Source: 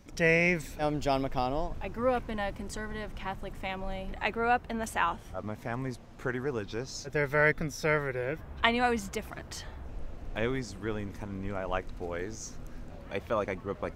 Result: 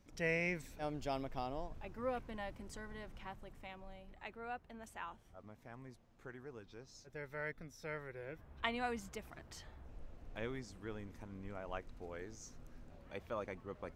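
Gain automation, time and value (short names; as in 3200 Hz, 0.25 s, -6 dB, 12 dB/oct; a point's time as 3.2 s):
3.12 s -11.5 dB
4.11 s -18.5 dB
7.7 s -18.5 dB
8.75 s -12 dB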